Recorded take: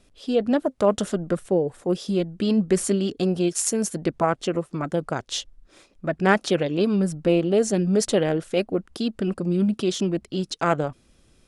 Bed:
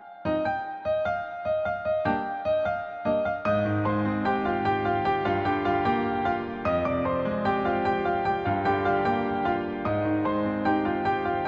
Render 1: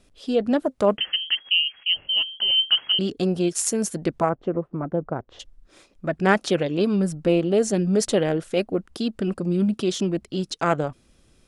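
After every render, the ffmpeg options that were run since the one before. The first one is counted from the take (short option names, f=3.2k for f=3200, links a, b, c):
-filter_complex "[0:a]asettb=1/sr,asplit=3[a][b][c];[a]atrim=end=0.974[d];[b]atrim=start=0.97:end=2.99,asetpts=PTS-STARTPTS,afade=t=in:d=0.004:c=qsin,afade=t=out:st=2.016:d=0.004:c=qsin,lowpass=f=2.8k:t=q:w=0.5098,lowpass=f=2.8k:t=q:w=0.6013,lowpass=f=2.8k:t=q:w=0.9,lowpass=f=2.8k:t=q:w=2.563,afreqshift=-3300[e];[c]atrim=start=2.986[f];[d][e]acrossfade=d=0.004:c1=hsin:c2=qsin[g];[g][f]acrossfade=d=0.004:c1=qsin:c2=hsin,asplit=3[h][i][j];[h]afade=t=out:st=4.28:d=0.02[k];[i]lowpass=1k,afade=t=in:st=4.28:d=0.02,afade=t=out:st=5.39:d=0.02[l];[j]afade=t=in:st=5.39:d=0.02[m];[k][l][m]amix=inputs=3:normalize=0"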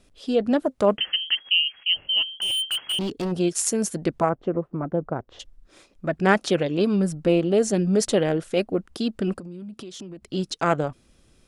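-filter_complex "[0:a]asplit=3[a][b][c];[a]afade=t=out:st=2.31:d=0.02[d];[b]volume=23dB,asoftclip=hard,volume=-23dB,afade=t=in:st=2.31:d=0.02,afade=t=out:st=3.31:d=0.02[e];[c]afade=t=in:st=3.31:d=0.02[f];[d][e][f]amix=inputs=3:normalize=0,asettb=1/sr,asplit=3[g][h][i];[g]atrim=end=9.394[j];[h]atrim=start=9.39:end=10.3,asetpts=PTS-STARTPTS,afade=t=in:d=0.004:c=qsin,afade=t=out:st=0.906:d=0.004:c=qsin,acompressor=threshold=-34dB:ratio=20:attack=3.2:release=140:knee=1:detection=peak[k];[i]atrim=start=10.296[l];[j][k]acrossfade=d=0.004:c1=hsin:c2=qsin[m];[m][l]acrossfade=d=0.004:c1=qsin:c2=hsin"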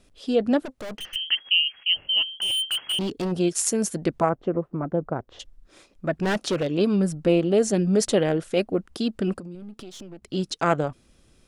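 -filter_complex "[0:a]asettb=1/sr,asplit=3[a][b][c];[a]atrim=end=0.654[d];[b]atrim=start=0.65:end=1.16,asetpts=PTS-STARTPTS,afade=t=in:d=0.004:c=qsin,afade=t=out:st=0.506:d=0.004:c=qsin,aeval=exprs='(tanh(44.7*val(0)+0.55)-tanh(0.55))/44.7':c=same[e];[c]atrim=start=1.156[f];[d][e]acrossfade=d=0.004:c1=hsin:c2=qsin[g];[g][f]acrossfade=d=0.004:c1=qsin:c2=hsin,asettb=1/sr,asplit=3[h][i][j];[h]atrim=end=6.144[k];[i]atrim=start=6.14:end=6.67,asetpts=PTS-STARTPTS,afade=t=in:d=0.004:c=qsin,afade=t=out:st=0.526:d=0.004:c=qsin,volume=19.5dB,asoftclip=hard,volume=-19.5dB[l];[j]atrim=start=6.666[m];[k][l]acrossfade=d=0.004:c1=hsin:c2=qsin[n];[n][m]acrossfade=d=0.004:c1=qsin:c2=hsin,asettb=1/sr,asplit=3[o][p][q];[o]atrim=end=9.554[r];[p]atrim=start=9.55:end=10.24,asetpts=PTS-STARTPTS,afade=t=in:d=0.004:c=qsin,afade=t=out:st=0.686:d=0.004:c=qsin,aeval=exprs='if(lt(val(0),0),0.447*val(0),val(0))':c=same[s];[q]atrim=start=10.236[t];[r][s]acrossfade=d=0.004:c1=hsin:c2=qsin[u];[u][t]acrossfade=d=0.004:c1=qsin:c2=hsin"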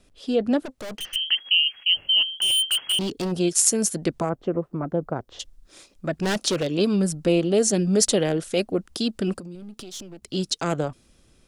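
-filter_complex "[0:a]acrossover=split=490|3600[a][b][c];[b]alimiter=limit=-20dB:level=0:latency=1:release=62[d];[c]dynaudnorm=f=200:g=9:m=8.5dB[e];[a][d][e]amix=inputs=3:normalize=0"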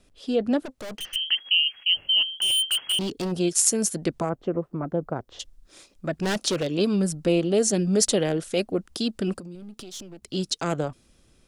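-af "volume=-1.5dB"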